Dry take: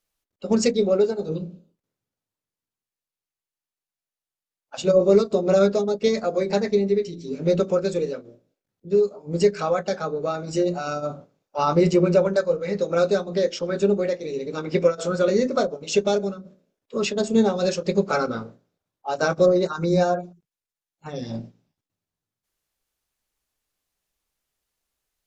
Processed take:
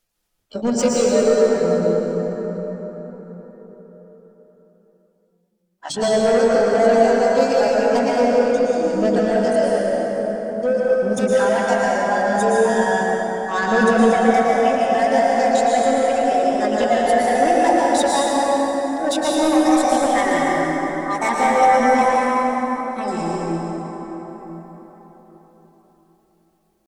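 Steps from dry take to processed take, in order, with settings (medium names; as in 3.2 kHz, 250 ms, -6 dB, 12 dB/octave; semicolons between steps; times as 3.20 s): gliding tape speed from 77% -> 111%; reverb removal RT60 1.2 s; bass shelf 120 Hz +3.5 dB; in parallel at 0 dB: compression 12:1, threshold -31 dBFS, peak gain reduction 20 dB; on the sum: pitch shift +5.5 st; saturation -14.5 dBFS, distortion -13 dB; plate-style reverb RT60 4.8 s, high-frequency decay 0.5×, pre-delay 100 ms, DRR -5.5 dB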